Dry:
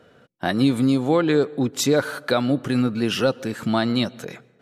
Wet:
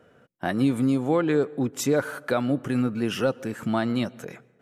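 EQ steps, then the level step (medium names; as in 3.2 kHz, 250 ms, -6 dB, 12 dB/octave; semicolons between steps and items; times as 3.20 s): peaking EQ 4.1 kHz -9.5 dB 0.65 oct; -3.5 dB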